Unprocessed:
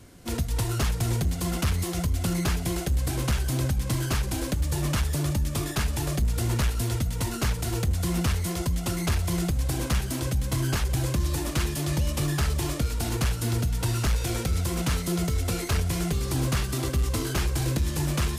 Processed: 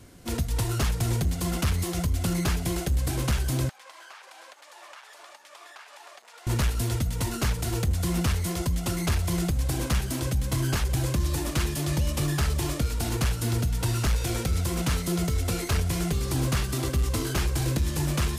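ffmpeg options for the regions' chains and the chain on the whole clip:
ffmpeg -i in.wav -filter_complex "[0:a]asettb=1/sr,asplit=3[link_01][link_02][link_03];[link_01]atrim=end=3.694[link_04];[link_02]atrim=start=3.69:end=6.47,asetpts=PTS-STARTPTS,afade=type=in:duration=0.004:curve=qsin,afade=type=out:start_time=2.776:duration=0.004:curve=qsin,highpass=frequency=730:width=0.5412,highpass=frequency=730:width=1.3066,acompressor=threshold=-39dB:ratio=8:attack=3.2:release=140:knee=1:detection=peak,aemphasis=mode=reproduction:type=75fm[link_05];[link_03]atrim=start=6.466[link_06];[link_04][link_05]acrossfade=duration=0.004:curve1=hsin:curve2=qsin[link_07];[link_07][link_06]acrossfade=duration=0.004:curve1=qsin:curve2=hsin" out.wav

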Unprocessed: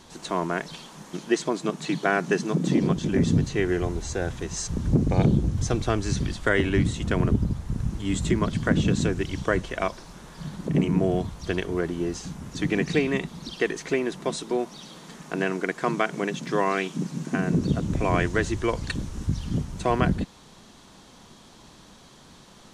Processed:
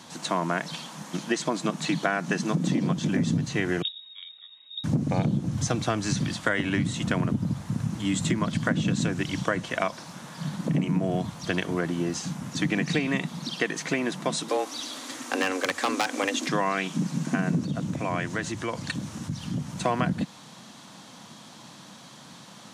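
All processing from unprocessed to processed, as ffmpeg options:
ffmpeg -i in.wav -filter_complex "[0:a]asettb=1/sr,asplit=3[link_01][link_02][link_03];[link_01]atrim=end=3.824[link_04];[link_02]atrim=start=3.82:end=4.84,asetpts=PTS-STARTPTS,afade=type=in:duration=0.004:curve=qsin,afade=type=out:start_time=1.016:duration=0.004:curve=qsin,agate=range=-26dB:threshold=-23dB:ratio=16:release=100:detection=peak,lowshelf=frequency=220:gain=9,lowpass=frequency=3200:width_type=q:width=0.5098,lowpass=frequency=3200:width_type=q:width=0.6013,lowpass=frequency=3200:width_type=q:width=0.9,lowpass=frequency=3200:width_type=q:width=2.563,afreqshift=-3800[link_05];[link_03]atrim=start=4.836[link_06];[link_04][link_05]acrossfade=duration=0.004:curve1=hsin:curve2=qsin[link_07];[link_07][link_06]acrossfade=duration=0.004:curve1=qsin:curve2=hsin,asettb=1/sr,asplit=3[link_08][link_09][link_10];[link_08]atrim=end=14.484[link_11];[link_09]atrim=start=14.48:end=16.49,asetpts=PTS-STARTPTS,afade=type=in:duration=0.004:curve=qsin,afade=type=out:start_time=2.006:duration=0.004:curve=qsin,highshelf=frequency=2100:gain=6.5,aeval=exprs='0.15*(abs(mod(val(0)/0.15+3,4)-2)-1)':channel_layout=same,afreqshift=90[link_12];[link_10]atrim=start=16.486[link_13];[link_11][link_12]acrossfade=duration=0.004:curve1=hsin:curve2=qsin[link_14];[link_14][link_13]acrossfade=duration=0.004:curve1=qsin:curve2=hsin,asettb=1/sr,asplit=3[link_15][link_16][link_17];[link_15]atrim=end=17.644[link_18];[link_16]atrim=start=17.64:end=19.79,asetpts=PTS-STARTPTS,afade=type=in:duration=0.004:curve=qsin,afade=type=out:start_time=2.146:duration=0.004:curve=qsin,highpass=51,acompressor=threshold=-32dB:ratio=2:attack=3.2:release=140:knee=1:detection=peak[link_19];[link_17]atrim=start=19.786[link_20];[link_18][link_19]acrossfade=duration=0.004:curve1=hsin:curve2=qsin[link_21];[link_21][link_20]acrossfade=duration=0.004:curve1=qsin:curve2=hsin,highpass=frequency=120:width=0.5412,highpass=frequency=120:width=1.3066,equalizer=frequency=400:width=3.8:gain=-11,acompressor=threshold=-26dB:ratio=5,volume=4.5dB" out.wav

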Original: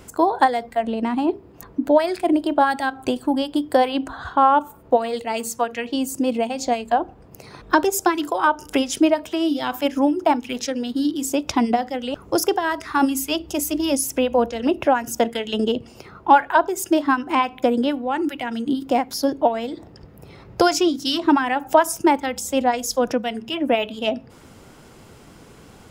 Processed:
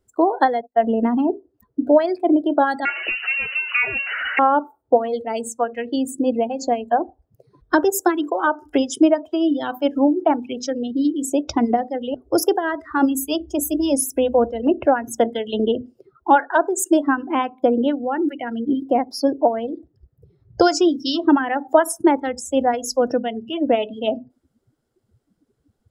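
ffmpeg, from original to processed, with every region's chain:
ffmpeg -i in.wav -filter_complex "[0:a]asettb=1/sr,asplit=3[link_01][link_02][link_03];[link_01]atrim=end=0.614[link_04];[link_02]atrim=start=0.61:end=1.3,asetpts=PTS-STARTPTS,afade=type=in:duration=0.004:curve=qsin,afade=type=out:start_time=0.686:duration=0.004:curve=qsin,agate=range=-29dB:threshold=-36dB:ratio=16:release=100:detection=peak,aecho=1:1:4.4:0.58,atrim=end_sample=30429[link_05];[link_03]atrim=start=1.296[link_06];[link_04][link_05]acrossfade=duration=0.004:curve1=hsin:curve2=qsin[link_07];[link_07][link_06]acrossfade=duration=0.004:curve1=qsin:curve2=hsin,asettb=1/sr,asplit=3[link_08][link_09][link_10];[link_08]atrim=end=2.854[link_11];[link_09]atrim=start=2.85:end=4.39,asetpts=PTS-STARTPTS,afade=type=in:duration=0.004:curve=qsin,afade=type=out:start_time=1.536:duration=0.004:curve=qsin,aeval=exprs='val(0)+0.5*0.112*sgn(val(0))':channel_layout=same,lowpass=frequency=2600:width_type=q:width=0.5098,lowpass=frequency=2600:width_type=q:width=0.6013,lowpass=frequency=2600:width_type=q:width=0.9,lowpass=frequency=2600:width_type=q:width=2.563,afreqshift=-3000[link_12];[link_10]atrim=start=4.386[link_13];[link_11][link_12]acrossfade=duration=0.004:curve1=hsin:curve2=qsin[link_14];[link_14][link_13]acrossfade=duration=0.004:curve1=qsin:curve2=hsin,asettb=1/sr,asplit=3[link_15][link_16][link_17];[link_15]atrim=end=16.364[link_18];[link_16]atrim=start=16.36:end=17.01,asetpts=PTS-STARTPTS,afade=type=in:duration=0.004:curve=qsin,afade=type=out:start_time=0.646:duration=0.004:curve=qsin,highpass=110,equalizer=frequency=7600:width_type=o:width=0.69:gain=7.5[link_19];[link_17]atrim=start=17.006[link_20];[link_18][link_19]acrossfade=duration=0.004:curve1=hsin:curve2=qsin[link_21];[link_21][link_20]acrossfade=duration=0.004:curve1=qsin:curve2=hsin,bandreject=frequency=50:width_type=h:width=6,bandreject=frequency=100:width_type=h:width=6,bandreject=frequency=150:width_type=h:width=6,bandreject=frequency=200:width_type=h:width=6,bandreject=frequency=250:width_type=h:width=6,afftdn=noise_reduction=30:noise_floor=-30,equalizer=frequency=160:width_type=o:width=0.67:gain=-8,equalizer=frequency=1000:width_type=o:width=0.67:gain=-7,equalizer=frequency=2500:width_type=o:width=0.67:gain=-10,equalizer=frequency=6300:width_type=o:width=0.67:gain=-4,volume=3.5dB" out.wav

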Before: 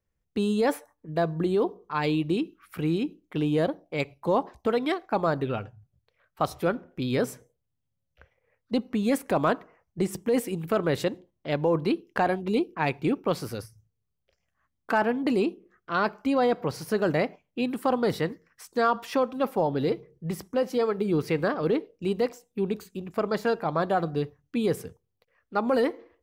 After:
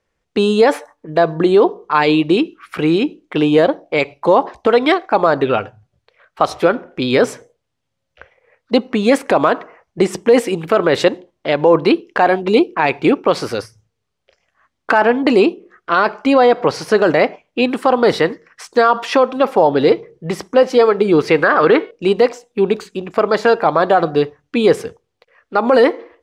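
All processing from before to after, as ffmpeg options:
ffmpeg -i in.wav -filter_complex "[0:a]asettb=1/sr,asplit=3[link_01][link_02][link_03];[link_01]atrim=end=21.424[link_04];[link_02]atrim=start=21.42:end=21.91,asetpts=PTS-STARTPTS,afade=type=in:duration=0.004:curve=qsin,afade=type=out:start_time=0.486:duration=0.004:curve=qsin,equalizer=frequency=1500:width_type=o:width=1.3:gain=10.5,bandreject=frequency=367.1:width_type=h:width=4,bandreject=frequency=734.2:width_type=h:width=4,bandreject=frequency=1101.3:width_type=h:width=4,bandreject=frequency=1468.4:width_type=h:width=4,bandreject=frequency=1835.5:width_type=h:width=4,bandreject=frequency=2202.6:width_type=h:width=4,bandreject=frequency=2569.7:width_type=h:width=4,bandreject=frequency=2936.8:width_type=h:width=4,bandreject=frequency=3303.9:width_type=h:width=4,bandreject=frequency=3671:width_type=h:width=4,bandreject=frequency=4038.1:width_type=h:width=4,bandreject=frequency=4405.2:width_type=h:width=4,bandreject=frequency=4772.3:width_type=h:width=4,bandreject=frequency=5139.4:width_type=h:width=4,bandreject=frequency=5506.5:width_type=h:width=4,bandreject=frequency=5873.6:width_type=h:width=4,bandreject=frequency=6240.7:width_type=h:width=4,bandreject=frequency=6607.8:width_type=h:width=4,bandreject=frequency=6974.9:width_type=h:width=4,bandreject=frequency=7342:width_type=h:width=4,bandreject=frequency=7709.1:width_type=h:width=4,bandreject=frequency=8076.2:width_type=h:width=4,bandreject=frequency=8443.3:width_type=h:width=4,bandreject=frequency=8810.4:width_type=h:width=4,bandreject=frequency=9177.5:width_type=h:width=4,bandreject=frequency=9544.6:width_type=h:width=4,bandreject=frequency=9911.7:width_type=h:width=4,bandreject=frequency=10278.8:width_type=h:width=4,bandreject=frequency=10645.9:width_type=h:width=4,bandreject=frequency=11013:width_type=h:width=4,bandreject=frequency=11380.1:width_type=h:width=4,bandreject=frequency=11747.2:width_type=h:width=4[link_05];[link_03]atrim=start=21.906[link_06];[link_04][link_05]acrossfade=duration=0.004:curve1=hsin:curve2=qsin[link_07];[link_07][link_06]acrossfade=duration=0.004:curve1=qsin:curve2=hsin,lowpass=7000,bass=frequency=250:gain=-13,treble=frequency=4000:gain=-3,alimiter=level_in=17.5dB:limit=-1dB:release=50:level=0:latency=1,volume=-1dB" out.wav

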